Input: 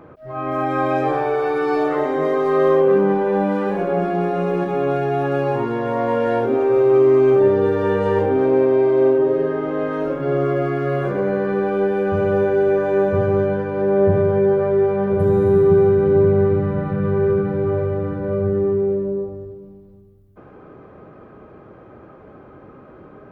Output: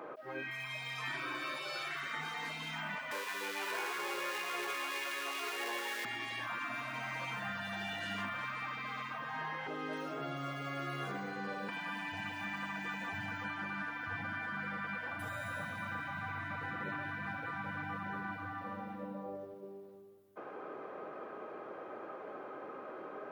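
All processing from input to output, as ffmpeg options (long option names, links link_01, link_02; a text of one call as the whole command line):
ffmpeg -i in.wav -filter_complex "[0:a]asettb=1/sr,asplit=3[link_01][link_02][link_03];[link_01]atrim=end=3.114[link_04];[link_02]atrim=start=3.11:end=6.05,asetpts=PTS-STARTPTS,afade=type=in:duration=0.004:curve=qsin,afade=type=out:start_time=2.936:duration=0.004:curve=qsin,aeval=exprs='val(0)+0.5*0.0211*sgn(val(0))':channel_layout=same,highpass=940,bandreject=frequency=1200:width=5.5[link_05];[link_03]atrim=start=6.046[link_06];[link_04][link_05]acrossfade=duration=0.004:curve1=hsin:curve2=qsin[link_07];[link_07][link_06]acrossfade=duration=0.004:curve1=qsin:curve2=hsin,asettb=1/sr,asplit=3[link_08][link_09][link_10];[link_08]atrim=end=9.674[link_11];[link_09]atrim=start=9.67:end=11.69,asetpts=PTS-STARTPTS,afade=type=in:duration=0.004:curve=qsin,afade=type=out:start_time=2.016:duration=0.004:curve=qsin,acrossover=split=250|3000[link_12][link_13][link_14];[link_13]acompressor=threshold=-39dB:ratio=2.5:attack=3.2:release=140:knee=2.83:detection=peak[link_15];[link_12][link_15][link_14]amix=inputs=3:normalize=0,aecho=1:1:1.5:0.33,atrim=end_sample=89082[link_16];[link_10]atrim=start=11.686[link_17];[link_11][link_16]acrossfade=duration=0.004:curve1=hsin:curve2=qsin[link_18];[link_18][link_17]acrossfade=duration=0.004:curve1=qsin:curve2=hsin,highpass=470,afftfilt=real='re*lt(hypot(re,im),0.0708)':imag='im*lt(hypot(re,im),0.0708)':win_size=1024:overlap=0.75,volume=1dB" out.wav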